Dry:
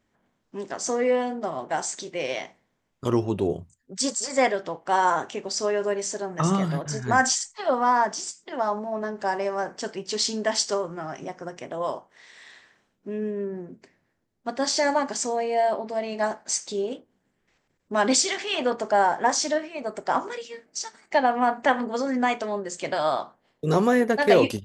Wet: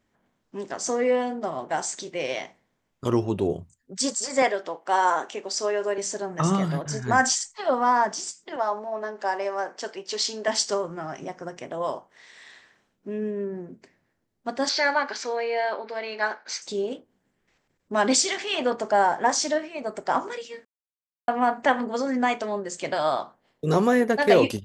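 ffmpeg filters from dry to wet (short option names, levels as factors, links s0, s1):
-filter_complex "[0:a]asettb=1/sr,asplit=3[s0][s1][s2];[s0]atrim=end=4.424[s3];[s1]atrim=start=4.42:end=5.98,asetpts=PTS-STARTPTS,afade=t=in:d=0.004:c=qsin,afade=t=out:st=1.556:d=0.004:c=qsin,highpass=310[s4];[s2]atrim=start=5.976[s5];[s3][s4]acrossfade=d=0.004:c1=hsin:c2=qsin[s6];[s6][s5]acrossfade=d=0.004:c1=qsin:c2=hsin,asettb=1/sr,asplit=3[s7][s8][s9];[s7]atrim=end=8.564[s10];[s8]atrim=start=8.56:end=10.48,asetpts=PTS-STARTPTS,afade=t=in:d=0.004:c=qsin,afade=t=out:st=1.916:d=0.004:c=qsin,highpass=380,lowpass=7200[s11];[s9]atrim=start=10.476[s12];[s10][s11]acrossfade=d=0.004:c1=hsin:c2=qsin[s13];[s13][s12]acrossfade=d=0.004:c1=qsin:c2=hsin,asettb=1/sr,asplit=3[s14][s15][s16];[s14]atrim=end=14.694[s17];[s15]atrim=start=14.69:end=16.62,asetpts=PTS-STARTPTS,afade=t=in:d=0.004:c=qsin,afade=t=out:st=1.926:d=0.004:c=qsin,highpass=420,equalizer=f=470:t=q:w=4:g=3,equalizer=f=660:t=q:w=4:g=-6,equalizer=f=1500:t=q:w=4:g=9,equalizer=f=2300:t=q:w=4:g=6,equalizer=f=4100:t=q:w=4:g=6,lowpass=f=5100:w=0.5412,lowpass=f=5100:w=1.3066[s18];[s16]atrim=start=16.616[s19];[s17][s18]acrossfade=d=0.004:c1=hsin:c2=qsin[s20];[s20][s19]acrossfade=d=0.004:c1=qsin:c2=hsin,asplit=3[s21][s22][s23];[s21]atrim=end=20.65,asetpts=PTS-STARTPTS,afade=t=out:st=20.646:d=0.004:c=hsin[s24];[s22]atrim=start=20.65:end=21.28,asetpts=PTS-STARTPTS,volume=0[s25];[s23]atrim=start=21.28,asetpts=PTS-STARTPTS,afade=t=in:d=0.004:c=hsin[s26];[s24][s25][s26]concat=n=3:v=0:a=1"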